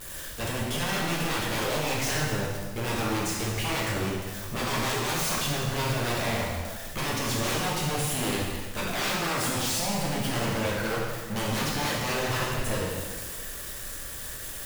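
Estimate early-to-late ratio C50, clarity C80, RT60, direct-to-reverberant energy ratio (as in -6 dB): 0.0 dB, 2.0 dB, 1.5 s, -5.0 dB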